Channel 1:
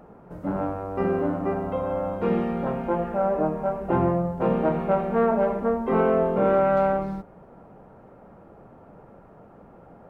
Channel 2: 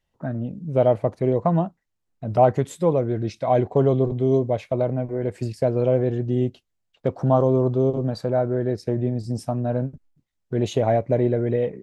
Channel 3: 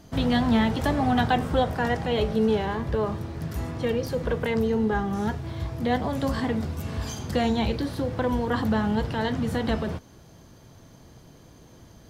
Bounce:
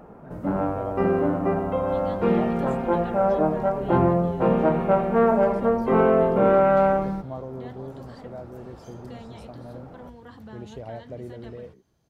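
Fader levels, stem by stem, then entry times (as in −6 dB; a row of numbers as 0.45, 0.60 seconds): +2.5, −17.5, −19.5 decibels; 0.00, 0.00, 1.75 seconds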